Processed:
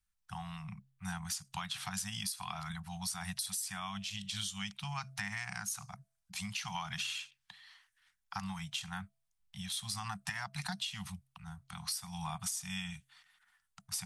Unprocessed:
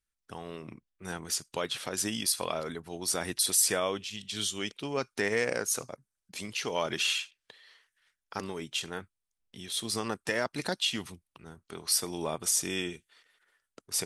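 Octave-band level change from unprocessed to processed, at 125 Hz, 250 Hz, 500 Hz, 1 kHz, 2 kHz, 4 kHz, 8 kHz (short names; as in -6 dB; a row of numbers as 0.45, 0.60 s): +1.0, -6.5, -26.5, -4.0, -6.5, -7.0, -9.5 dB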